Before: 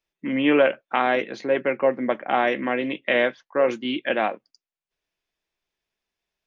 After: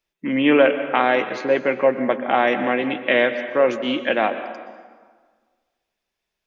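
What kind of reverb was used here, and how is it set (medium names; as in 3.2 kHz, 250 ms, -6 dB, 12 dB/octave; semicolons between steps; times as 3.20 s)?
plate-style reverb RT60 1.6 s, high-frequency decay 0.7×, pre-delay 110 ms, DRR 10 dB; trim +3 dB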